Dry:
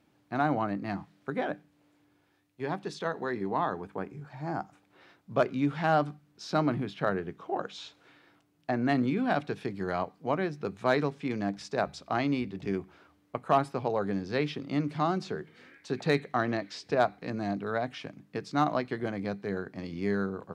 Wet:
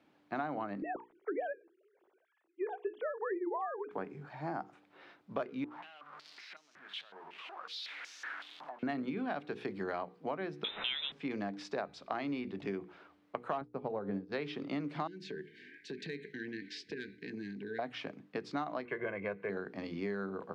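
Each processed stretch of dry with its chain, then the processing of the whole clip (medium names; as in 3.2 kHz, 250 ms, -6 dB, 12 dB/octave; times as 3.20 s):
0.82–3.91 s: formants replaced by sine waves + tilt EQ -2.5 dB/octave
5.64–8.83 s: jump at every zero crossing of -29.5 dBFS + compression, threshold -33 dBFS + step-sequenced band-pass 5.4 Hz 940–6000 Hz
10.64–11.12 s: zero-crossing glitches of -20 dBFS + frequency inversion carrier 3.8 kHz
13.61–14.32 s: tilt EQ -3 dB/octave + de-hum 175.3 Hz, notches 35 + upward expansion 2.5:1, over -44 dBFS
15.07–17.79 s: brick-wall FIR band-stop 470–1500 Hz + compression 5:1, threshold -37 dBFS
18.85–19.50 s: resonant high shelf 3.2 kHz -10 dB, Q 3 + comb 1.9 ms, depth 74%
whole clip: three-band isolator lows -12 dB, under 190 Hz, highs -13 dB, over 4.5 kHz; hum notches 60/120/180/240/300/360/420/480 Hz; compression 6:1, threshold -35 dBFS; trim +1 dB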